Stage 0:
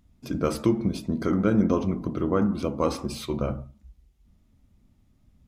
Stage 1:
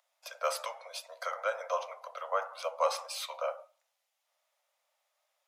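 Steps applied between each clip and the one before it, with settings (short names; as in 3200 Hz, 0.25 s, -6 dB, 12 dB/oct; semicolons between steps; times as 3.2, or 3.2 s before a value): steep high-pass 530 Hz 96 dB/oct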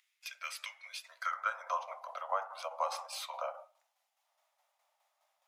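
compressor 1.5:1, threshold -43 dBFS, peak gain reduction 7.5 dB; tremolo saw down 4.8 Hz, depth 50%; high-pass sweep 2200 Hz -> 780 Hz, 0.83–1.91; gain +1 dB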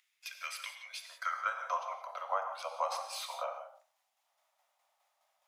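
non-linear reverb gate 0.2 s flat, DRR 6 dB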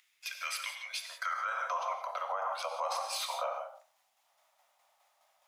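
limiter -31 dBFS, peak gain reduction 11 dB; gain +6 dB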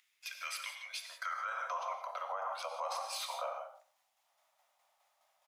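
echo 0.118 s -21.5 dB; gain -4 dB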